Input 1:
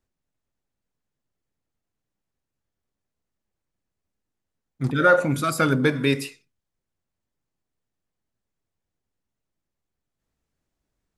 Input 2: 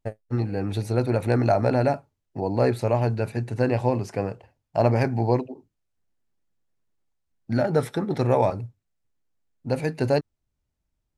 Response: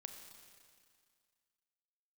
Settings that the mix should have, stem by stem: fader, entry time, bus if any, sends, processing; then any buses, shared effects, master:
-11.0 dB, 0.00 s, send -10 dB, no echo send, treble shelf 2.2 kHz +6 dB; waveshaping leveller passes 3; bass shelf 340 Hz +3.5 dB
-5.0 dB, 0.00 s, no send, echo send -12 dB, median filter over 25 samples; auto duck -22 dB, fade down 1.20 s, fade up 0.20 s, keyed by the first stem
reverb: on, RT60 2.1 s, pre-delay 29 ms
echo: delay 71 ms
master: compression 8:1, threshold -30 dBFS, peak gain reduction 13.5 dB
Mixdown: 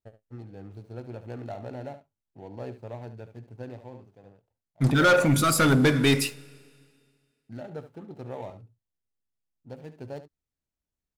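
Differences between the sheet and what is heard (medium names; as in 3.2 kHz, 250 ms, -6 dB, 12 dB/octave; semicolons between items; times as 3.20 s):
stem 2 -5.0 dB -> -16.5 dB; master: missing compression 8:1, threshold -30 dBFS, peak gain reduction 13.5 dB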